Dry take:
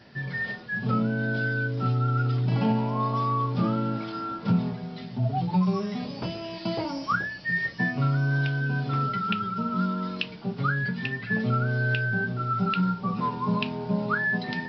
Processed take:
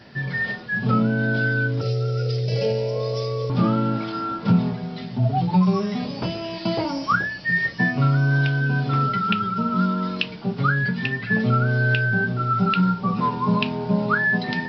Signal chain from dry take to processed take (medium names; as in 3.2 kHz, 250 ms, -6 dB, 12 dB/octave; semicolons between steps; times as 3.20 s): 1.81–3.50 s: FFT filter 100 Hz 0 dB, 270 Hz -21 dB, 500 Hz +13 dB, 830 Hz -17 dB, 1.2 kHz -18 dB, 2.1 kHz -1 dB, 3.3 kHz -2 dB, 5.3 kHz +12 dB; trim +5.5 dB